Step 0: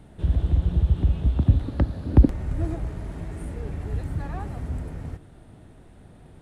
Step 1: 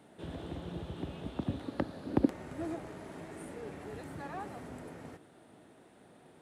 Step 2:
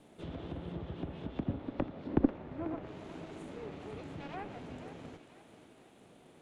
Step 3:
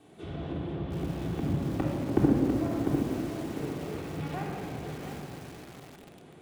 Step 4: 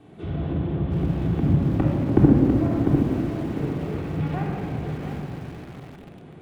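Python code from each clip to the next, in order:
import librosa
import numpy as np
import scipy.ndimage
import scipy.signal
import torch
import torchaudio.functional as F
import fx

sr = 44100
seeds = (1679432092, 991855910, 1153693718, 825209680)

y1 = scipy.signal.sosfilt(scipy.signal.butter(2, 280.0, 'highpass', fs=sr, output='sos'), x)
y1 = y1 * librosa.db_to_amplitude(-3.0)
y2 = fx.lower_of_two(y1, sr, delay_ms=0.3)
y2 = fx.env_lowpass_down(y2, sr, base_hz=1800.0, full_db=-35.5)
y2 = fx.echo_thinned(y2, sr, ms=491, feedback_pct=56, hz=810.0, wet_db=-10.0)
y3 = scipy.signal.sosfilt(scipy.signal.butter(2, 53.0, 'highpass', fs=sr, output='sos'), y2)
y3 = fx.room_shoebox(y3, sr, seeds[0], volume_m3=2400.0, walls='mixed', distance_m=3.5)
y3 = fx.echo_crushed(y3, sr, ms=699, feedback_pct=35, bits=7, wet_db=-6)
y4 = fx.bass_treble(y3, sr, bass_db=7, treble_db=-11)
y4 = y4 * librosa.db_to_amplitude(4.5)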